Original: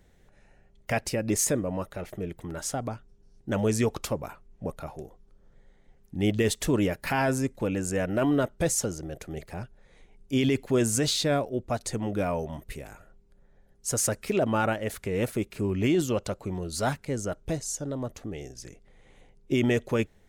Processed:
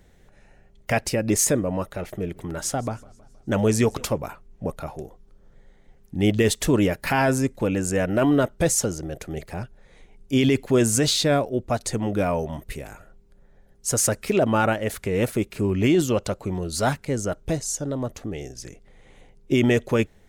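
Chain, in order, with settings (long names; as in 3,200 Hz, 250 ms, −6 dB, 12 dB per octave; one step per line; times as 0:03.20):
0:02.03–0:04.18: feedback echo with a swinging delay time 159 ms, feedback 53%, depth 169 cents, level −23 dB
level +5 dB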